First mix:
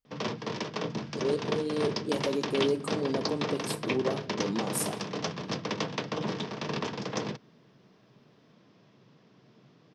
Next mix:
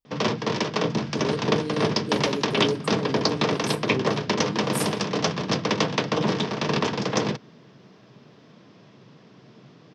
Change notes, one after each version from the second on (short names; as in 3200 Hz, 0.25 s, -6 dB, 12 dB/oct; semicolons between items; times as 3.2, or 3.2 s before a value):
background +9.0 dB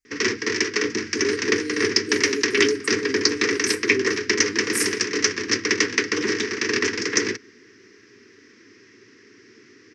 master: add EQ curve 100 Hz 0 dB, 150 Hz -23 dB, 260 Hz +1 dB, 410 Hz +6 dB, 640 Hz -26 dB, 1900 Hz +13 dB, 3500 Hz -5 dB, 5700 Hz +12 dB, 14000 Hz +1 dB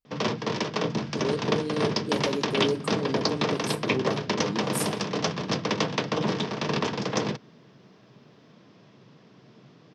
background -3.0 dB; master: remove EQ curve 100 Hz 0 dB, 150 Hz -23 dB, 260 Hz +1 dB, 410 Hz +6 dB, 640 Hz -26 dB, 1900 Hz +13 dB, 3500 Hz -5 dB, 5700 Hz +12 dB, 14000 Hz +1 dB